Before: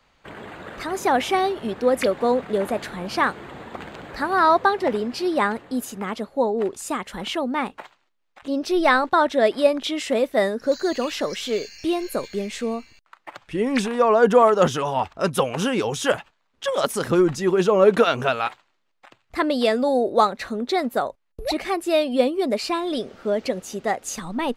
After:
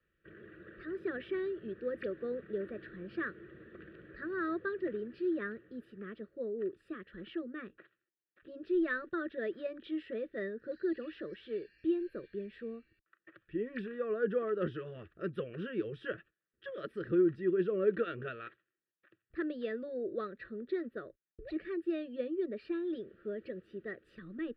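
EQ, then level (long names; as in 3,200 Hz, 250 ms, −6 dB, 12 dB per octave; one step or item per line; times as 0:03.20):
pair of resonant band-passes 780 Hz, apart 2.6 octaves
spectral tilt −4 dB per octave
phaser with its sweep stopped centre 1,400 Hz, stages 8
0.0 dB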